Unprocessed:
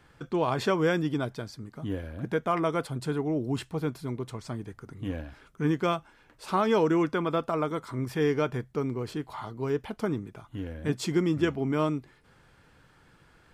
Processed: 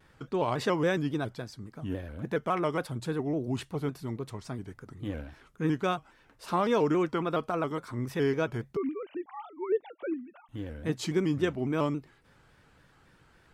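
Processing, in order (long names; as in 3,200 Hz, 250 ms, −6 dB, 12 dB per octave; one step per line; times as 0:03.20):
0:08.77–0:10.49: three sine waves on the formant tracks
pitch modulation by a square or saw wave square 3.6 Hz, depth 100 cents
level −2 dB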